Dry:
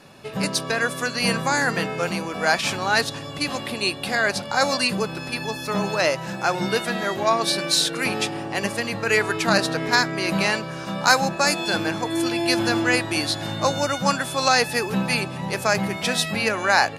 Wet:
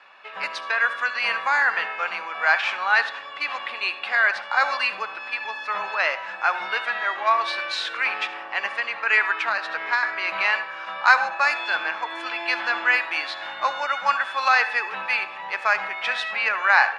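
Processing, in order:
on a send at −13 dB: convolution reverb RT60 0.45 s, pre-delay 57 ms
0:09.32–0:10.03: on the sum: downward compressor, threshold −19 dBFS, peak gain reduction 6.5 dB
flat-topped band-pass 1,600 Hz, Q 0.87
level +3.5 dB

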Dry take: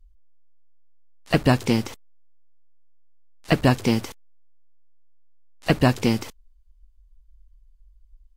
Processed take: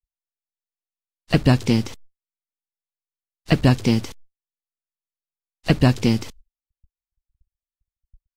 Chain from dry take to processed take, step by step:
parametric band 4,400 Hz +7.5 dB 2.4 octaves
noise gate −44 dBFS, range −56 dB
low-shelf EQ 380 Hz +11 dB
level −5.5 dB

